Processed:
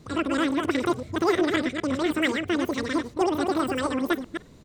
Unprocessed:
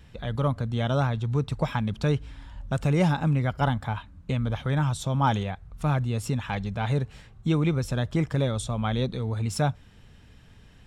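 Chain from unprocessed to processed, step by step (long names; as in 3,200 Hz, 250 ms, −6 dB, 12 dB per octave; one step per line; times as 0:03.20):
delay that plays each chunk backwards 301 ms, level −5.5 dB
high-shelf EQ 4,000 Hz −11.5 dB
echo with shifted repeats 114 ms, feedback 34%, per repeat +37 Hz, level −23 dB
wrong playback speed 33 rpm record played at 78 rpm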